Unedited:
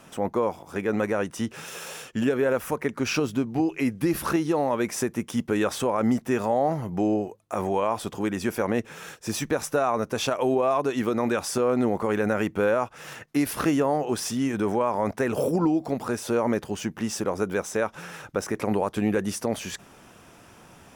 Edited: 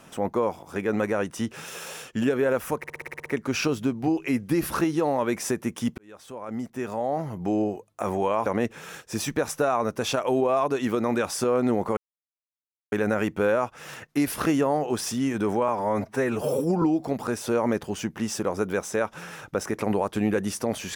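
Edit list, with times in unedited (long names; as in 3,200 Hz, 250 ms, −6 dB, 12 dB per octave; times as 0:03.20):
0:02.78: stutter 0.06 s, 9 plays
0:05.50–0:07.28: fade in
0:07.98–0:08.60: remove
0:12.11: splice in silence 0.95 s
0:14.87–0:15.63: time-stretch 1.5×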